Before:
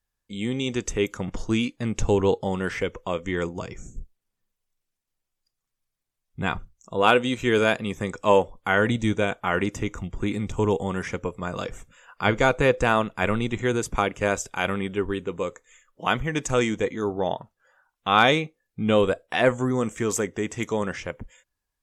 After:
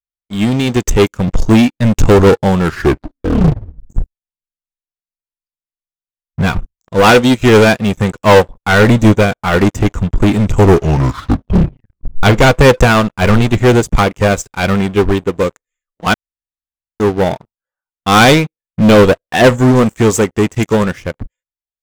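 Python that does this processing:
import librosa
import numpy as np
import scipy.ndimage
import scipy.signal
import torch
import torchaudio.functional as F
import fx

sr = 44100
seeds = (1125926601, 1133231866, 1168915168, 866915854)

y = fx.edit(x, sr, fx.tape_stop(start_s=2.55, length_s=1.35),
    fx.tape_stop(start_s=10.56, length_s=1.67),
    fx.room_tone_fill(start_s=16.14, length_s=0.86), tone=tone)
y = fx.low_shelf(y, sr, hz=220.0, db=8.0)
y = fx.leveller(y, sr, passes=5)
y = fx.upward_expand(y, sr, threshold_db=-18.0, expansion=2.5)
y = y * 10.0 ** (2.0 / 20.0)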